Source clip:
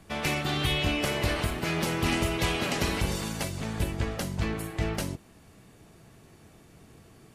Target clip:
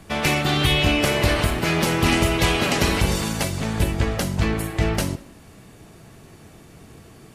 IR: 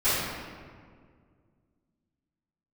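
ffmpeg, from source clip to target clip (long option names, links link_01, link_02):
-filter_complex "[0:a]asplit=2[link_01][link_02];[1:a]atrim=start_sample=2205,atrim=end_sample=6174,adelay=65[link_03];[link_02][link_03]afir=irnorm=-1:irlink=0,volume=-31.5dB[link_04];[link_01][link_04]amix=inputs=2:normalize=0,volume=8dB"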